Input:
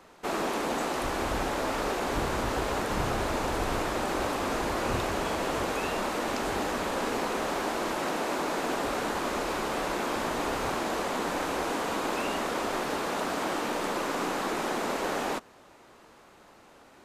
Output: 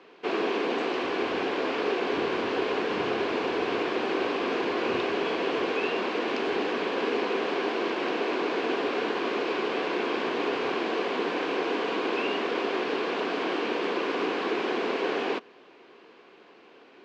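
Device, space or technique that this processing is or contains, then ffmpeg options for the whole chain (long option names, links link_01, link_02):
phone earpiece: -af "highpass=360,equalizer=frequency=410:width_type=q:width=4:gain=4,equalizer=frequency=600:width_type=q:width=4:gain=-10,equalizer=frequency=860:width_type=q:width=4:gain=-10,equalizer=frequency=1300:width_type=q:width=4:gain=-10,equalizer=frequency=1900:width_type=q:width=4:gain=-6,equalizer=frequency=3700:width_type=q:width=4:gain=-5,lowpass=frequency=3800:width=0.5412,lowpass=frequency=3800:width=1.3066,volume=7.5dB"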